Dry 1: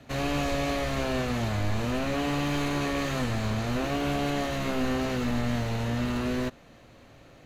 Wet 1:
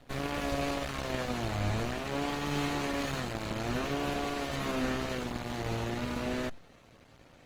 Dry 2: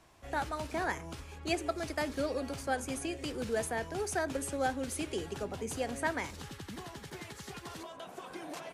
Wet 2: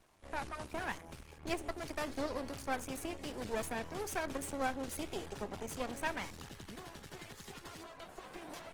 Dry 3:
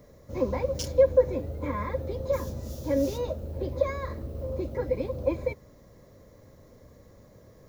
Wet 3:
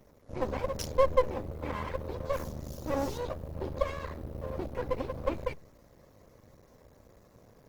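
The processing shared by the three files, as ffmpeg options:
-af "aeval=exprs='max(val(0),0)':c=same" -ar 48000 -c:a libopus -b:a 20k

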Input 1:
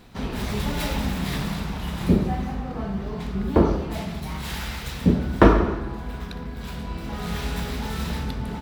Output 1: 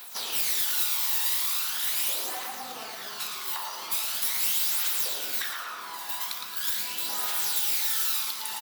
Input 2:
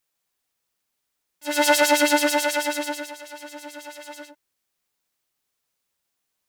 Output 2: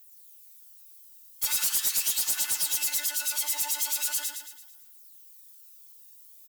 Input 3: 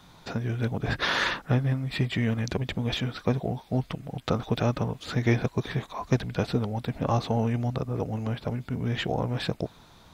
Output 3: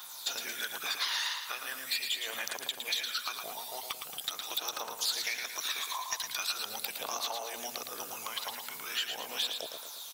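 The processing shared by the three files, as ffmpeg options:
-af "afftfilt=real='re*lt(hypot(re,im),0.282)':imag='im*lt(hypot(re,im),0.282)':win_size=1024:overlap=0.75,highpass=1.3k,aphaser=in_gain=1:out_gain=1:delay=1.1:decay=0.52:speed=0.41:type=triangular,equalizer=f=2k:t=o:w=0.96:g=-5.5,acompressor=threshold=-41dB:ratio=10,aemphasis=mode=production:type=75fm,asoftclip=type=hard:threshold=-27.5dB,aecho=1:1:112|224|336|448|560|672:0.501|0.231|0.106|0.0488|0.0224|0.0103,volume=6dB"

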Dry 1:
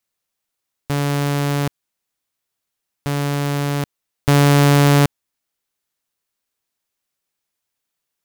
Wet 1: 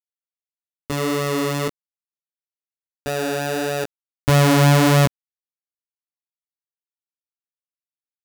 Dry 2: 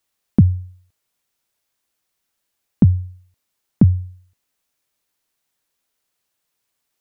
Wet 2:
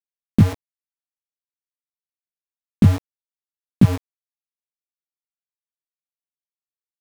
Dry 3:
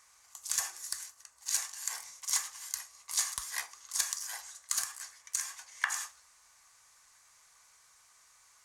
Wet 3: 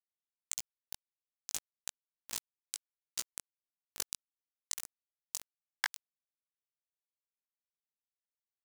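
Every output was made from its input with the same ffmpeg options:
-af "aeval=exprs='val(0)*gte(abs(val(0)),0.119)':c=same,flanger=delay=15.5:depth=4.3:speed=1.6,volume=2.5dB"

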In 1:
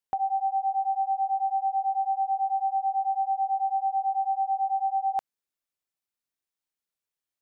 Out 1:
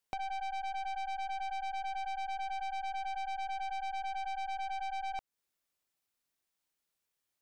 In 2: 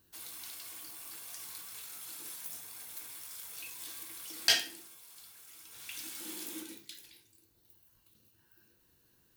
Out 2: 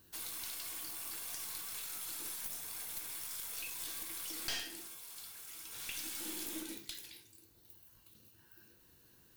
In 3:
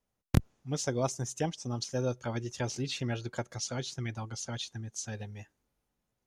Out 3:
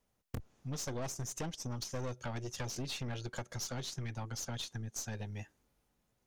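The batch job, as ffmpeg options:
-af "aeval=exprs='(tanh(50.1*val(0)+0.5)-tanh(0.5))/50.1':c=same,acompressor=threshold=-46dB:ratio=2.5,volume=6.5dB"

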